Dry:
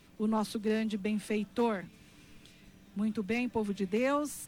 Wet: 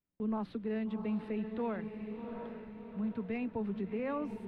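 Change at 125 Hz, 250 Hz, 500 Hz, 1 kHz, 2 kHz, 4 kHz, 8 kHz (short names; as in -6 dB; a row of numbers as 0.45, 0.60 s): -3.0 dB, -3.0 dB, -5.0 dB, -6.5 dB, -8.5 dB, under -10 dB, under -30 dB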